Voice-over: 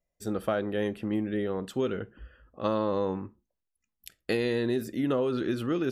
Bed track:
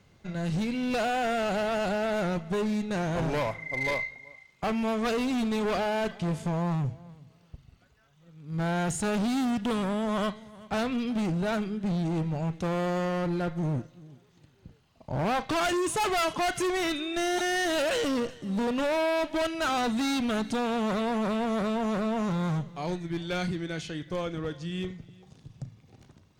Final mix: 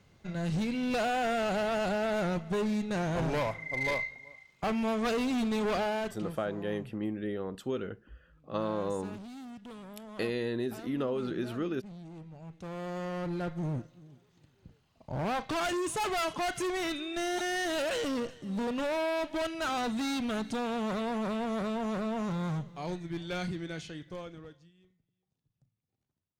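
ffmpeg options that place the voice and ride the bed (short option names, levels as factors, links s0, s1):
-filter_complex "[0:a]adelay=5900,volume=0.562[s0];[1:a]volume=3.76,afade=t=out:st=5.83:d=0.56:silence=0.158489,afade=t=in:st=12.4:d=1.05:silence=0.211349,afade=t=out:st=23.69:d=1.04:silence=0.0446684[s1];[s0][s1]amix=inputs=2:normalize=0"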